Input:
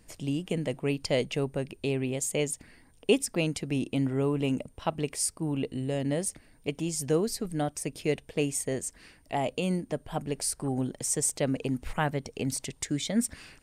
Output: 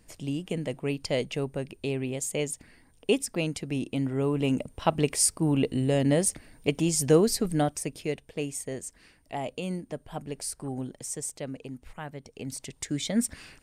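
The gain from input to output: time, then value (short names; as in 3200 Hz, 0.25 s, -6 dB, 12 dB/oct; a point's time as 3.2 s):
4.06 s -1 dB
4.96 s +6 dB
7.52 s +6 dB
8.17 s -4 dB
10.74 s -4 dB
12 s -11.5 dB
13.06 s +1 dB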